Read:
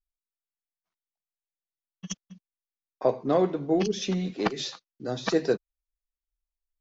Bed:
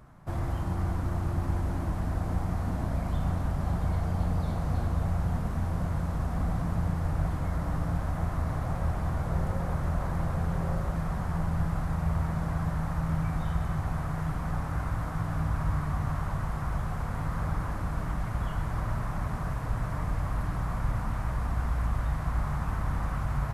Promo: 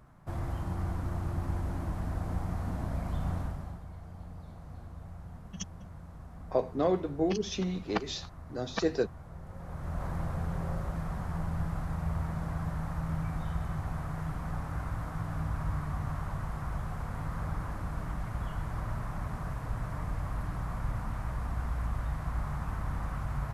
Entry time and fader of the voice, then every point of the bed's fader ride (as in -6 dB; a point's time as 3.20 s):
3.50 s, -4.5 dB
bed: 3.40 s -4 dB
3.85 s -17 dB
9.42 s -17 dB
10.04 s -4.5 dB